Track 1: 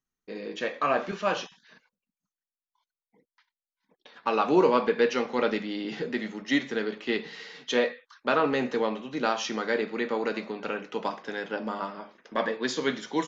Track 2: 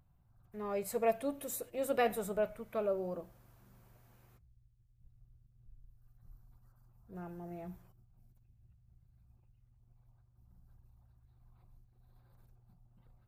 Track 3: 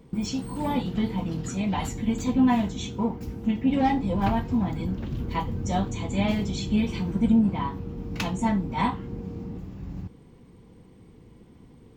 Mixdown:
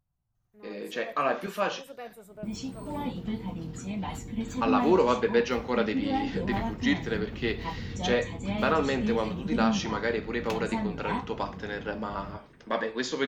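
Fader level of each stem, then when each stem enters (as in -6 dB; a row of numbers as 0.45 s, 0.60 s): -1.5 dB, -11.5 dB, -7.0 dB; 0.35 s, 0.00 s, 2.30 s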